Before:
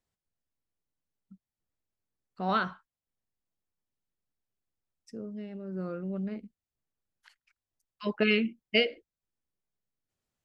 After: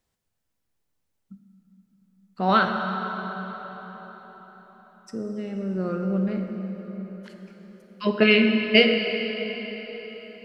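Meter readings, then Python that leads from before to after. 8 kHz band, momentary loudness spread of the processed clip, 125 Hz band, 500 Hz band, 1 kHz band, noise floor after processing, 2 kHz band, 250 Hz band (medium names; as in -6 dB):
no reading, 21 LU, +10.0 dB, +9.5 dB, +10.0 dB, -77 dBFS, +9.5 dB, +10.0 dB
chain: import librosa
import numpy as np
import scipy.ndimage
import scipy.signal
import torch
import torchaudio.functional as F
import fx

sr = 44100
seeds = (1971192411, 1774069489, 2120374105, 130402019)

y = fx.rev_plate(x, sr, seeds[0], rt60_s=4.9, hf_ratio=0.75, predelay_ms=0, drr_db=3.0)
y = y * librosa.db_to_amplitude(8.0)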